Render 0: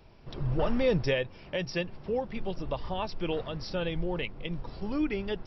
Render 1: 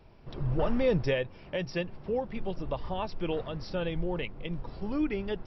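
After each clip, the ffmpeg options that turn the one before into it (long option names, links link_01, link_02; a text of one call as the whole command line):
ffmpeg -i in.wav -af "highshelf=frequency=3300:gain=-7" out.wav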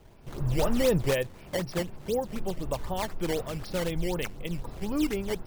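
ffmpeg -i in.wav -af "acrusher=samples=10:mix=1:aa=0.000001:lfo=1:lforange=16:lforate=4,volume=2dB" out.wav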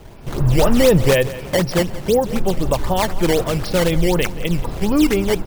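ffmpeg -i in.wav -filter_complex "[0:a]aecho=1:1:177|354|531:0.126|0.0466|0.0172,asplit=2[link_01][link_02];[link_02]alimiter=limit=-23.5dB:level=0:latency=1,volume=0dB[link_03];[link_01][link_03]amix=inputs=2:normalize=0,volume=8dB" out.wav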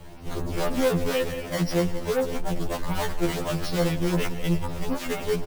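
ffmpeg -i in.wav -af "asoftclip=type=tanh:threshold=-20.5dB,aecho=1:1:108:0.133,afftfilt=real='re*2*eq(mod(b,4),0)':imag='im*2*eq(mod(b,4),0)':win_size=2048:overlap=0.75" out.wav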